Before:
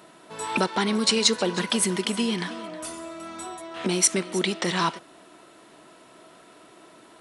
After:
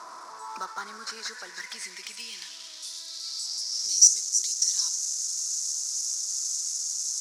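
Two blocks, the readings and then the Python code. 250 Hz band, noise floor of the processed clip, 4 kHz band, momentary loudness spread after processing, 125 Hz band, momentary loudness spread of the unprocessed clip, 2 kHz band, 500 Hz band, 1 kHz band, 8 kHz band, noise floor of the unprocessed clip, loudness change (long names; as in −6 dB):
below −30 dB, −44 dBFS, −1.5 dB, 18 LU, below −30 dB, 16 LU, −10.5 dB, below −20 dB, below −10 dB, +6.5 dB, −52 dBFS, −0.5 dB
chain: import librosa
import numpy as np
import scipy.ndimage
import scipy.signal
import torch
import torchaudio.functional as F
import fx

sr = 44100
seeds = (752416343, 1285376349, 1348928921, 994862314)

p1 = fx.delta_mod(x, sr, bps=64000, step_db=-27.0)
p2 = scipy.signal.sosfilt(scipy.signal.butter(2, 110.0, 'highpass', fs=sr, output='sos'), p1)
p3 = fx.peak_eq(p2, sr, hz=580.0, db=-3.0, octaves=0.23)
p4 = fx.filter_sweep_bandpass(p3, sr, from_hz=1100.0, to_hz=6500.0, start_s=0.48, end_s=4.14, q=4.5)
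p5 = np.clip(p4, -10.0 ** (-32.5 / 20.0), 10.0 ** (-32.5 / 20.0))
p6 = p4 + (p5 * 10.0 ** (-6.5 / 20.0))
p7 = fx.high_shelf_res(p6, sr, hz=4000.0, db=11.0, q=3.0)
y = p7 * 10.0 ** (-3.0 / 20.0)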